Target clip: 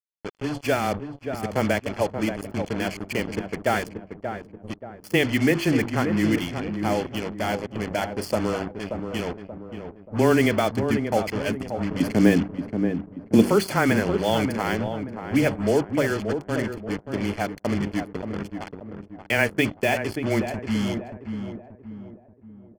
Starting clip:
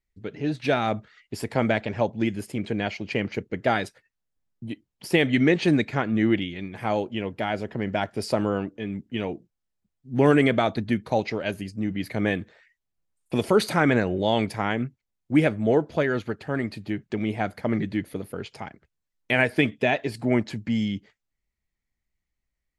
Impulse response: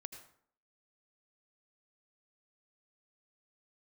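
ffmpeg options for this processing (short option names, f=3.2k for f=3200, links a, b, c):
-filter_complex "[0:a]asettb=1/sr,asplit=3[a][b][c];[a]atrim=end=12.004[d];[b]atrim=start=12:end=13.48,asetpts=PTS-STARTPTS,afade=t=in:d=0.004:c=qsin,afade=t=out:st=1.476:d=0.004:c=qsin,equalizer=f=270:w=1:g=13.5[e];[c]atrim=start=13.476[f];[d][e]acrossfade=d=0.004:c1=hsin:c2=qsin[g];[g][f]acrossfade=d=0.004:c1=qsin:c2=hsin,bandreject=f=50:t=h:w=6,bandreject=f=100:t=h:w=6,bandreject=f=150:t=h:w=6,bandreject=f=200:t=h:w=6,bandreject=f=250:t=h:w=6,bandreject=f=300:t=h:w=6,bandreject=f=350:t=h:w=6,bandreject=f=400:t=h:w=6,afreqshift=-13,acrusher=bits=4:mix=0:aa=0.5,asuperstop=centerf=3800:order=12:qfactor=7.4,asplit=2[h][i];[i]adelay=581,lowpass=f=1.1k:p=1,volume=-6.5dB,asplit=2[j][k];[k]adelay=581,lowpass=f=1.1k:p=1,volume=0.45,asplit=2[l][m];[m]adelay=581,lowpass=f=1.1k:p=1,volume=0.45,asplit=2[n][o];[o]adelay=581,lowpass=f=1.1k:p=1,volume=0.45,asplit=2[p][q];[q]adelay=581,lowpass=f=1.1k:p=1,volume=0.45[r];[h][j][l][n][p][r]amix=inputs=6:normalize=0"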